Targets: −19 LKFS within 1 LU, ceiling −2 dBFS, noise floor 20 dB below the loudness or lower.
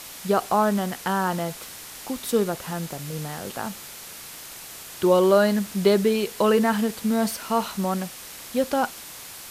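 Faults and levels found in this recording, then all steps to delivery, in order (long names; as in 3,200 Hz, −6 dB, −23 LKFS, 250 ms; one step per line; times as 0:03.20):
background noise floor −41 dBFS; target noise floor −44 dBFS; integrated loudness −24.0 LKFS; sample peak −7.5 dBFS; target loudness −19.0 LKFS
→ noise reduction from a noise print 6 dB
level +5 dB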